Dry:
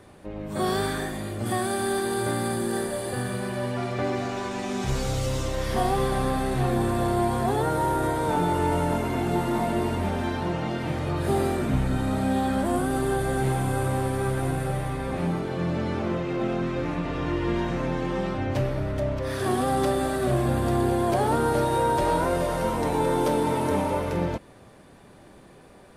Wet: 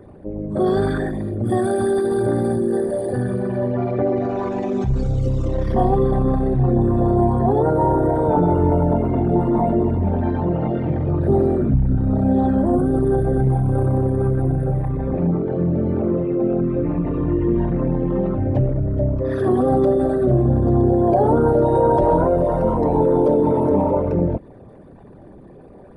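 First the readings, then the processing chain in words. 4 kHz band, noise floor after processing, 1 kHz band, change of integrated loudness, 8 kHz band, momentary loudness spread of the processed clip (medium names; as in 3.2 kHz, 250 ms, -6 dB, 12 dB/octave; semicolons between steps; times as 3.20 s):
under -10 dB, -43 dBFS, +2.5 dB, +7.0 dB, under -10 dB, 6 LU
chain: resonances exaggerated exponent 2; trim +7.5 dB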